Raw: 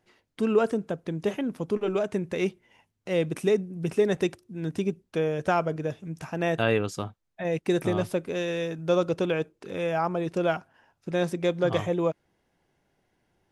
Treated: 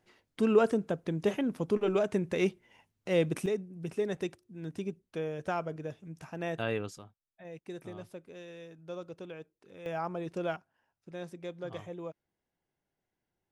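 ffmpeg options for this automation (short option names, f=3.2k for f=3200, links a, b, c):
-af "asetnsamples=n=441:p=0,asendcmd='3.46 volume volume -9dB;6.98 volume volume -18dB;9.86 volume volume -8.5dB;10.56 volume volume -15.5dB',volume=-1.5dB"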